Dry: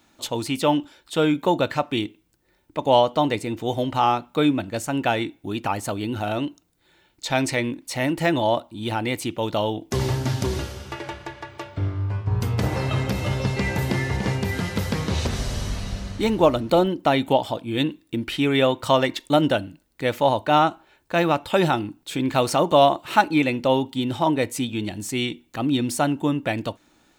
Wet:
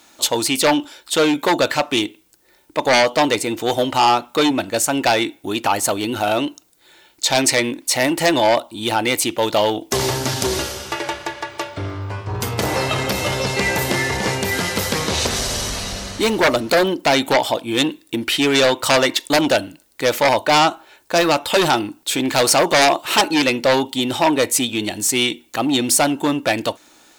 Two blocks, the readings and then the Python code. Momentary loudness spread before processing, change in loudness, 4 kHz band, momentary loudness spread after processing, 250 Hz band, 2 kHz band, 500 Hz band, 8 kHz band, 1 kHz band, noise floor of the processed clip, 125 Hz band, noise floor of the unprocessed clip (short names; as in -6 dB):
10 LU, +5.0 dB, +10.0 dB, 9 LU, +2.5 dB, +8.5 dB, +4.0 dB, +15.0 dB, +4.0 dB, -54 dBFS, -2.5 dB, -63 dBFS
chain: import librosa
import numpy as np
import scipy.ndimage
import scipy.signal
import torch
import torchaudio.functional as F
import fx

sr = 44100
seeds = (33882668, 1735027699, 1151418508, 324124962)

y = fx.fold_sine(x, sr, drive_db=12, ceiling_db=-2.5)
y = fx.bass_treble(y, sr, bass_db=-12, treble_db=6)
y = y * librosa.db_to_amplitude(-6.5)